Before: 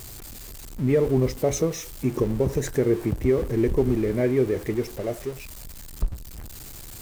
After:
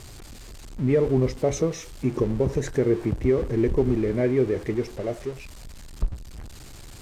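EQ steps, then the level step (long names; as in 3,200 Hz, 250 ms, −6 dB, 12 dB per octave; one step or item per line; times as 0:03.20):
high-frequency loss of the air 58 metres
0.0 dB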